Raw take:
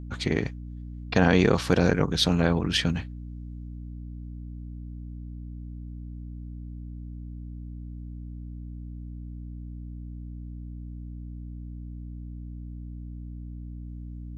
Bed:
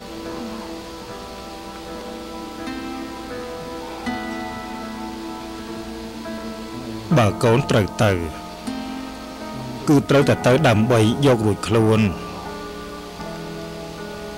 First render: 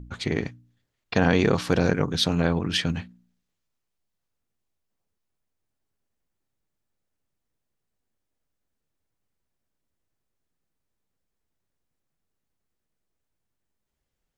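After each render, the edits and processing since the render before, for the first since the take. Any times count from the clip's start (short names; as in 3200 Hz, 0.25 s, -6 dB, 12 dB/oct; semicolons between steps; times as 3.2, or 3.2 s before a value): de-hum 60 Hz, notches 5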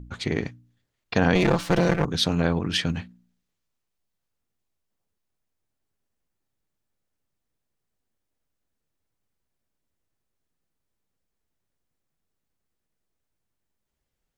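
1.35–2.05 minimum comb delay 5.9 ms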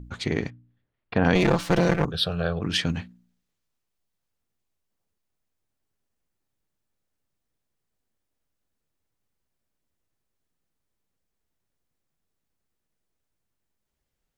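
0.5–1.25 air absorption 360 m; 2.11–2.62 fixed phaser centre 1400 Hz, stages 8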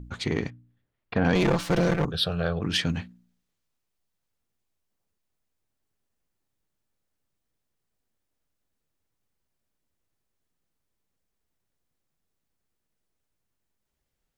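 soft clip -13 dBFS, distortion -15 dB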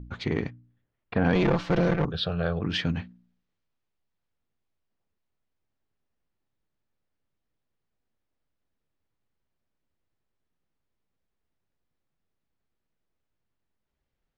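air absorption 170 m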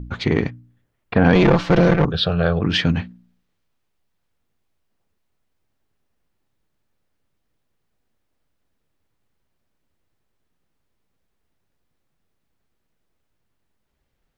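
gain +9 dB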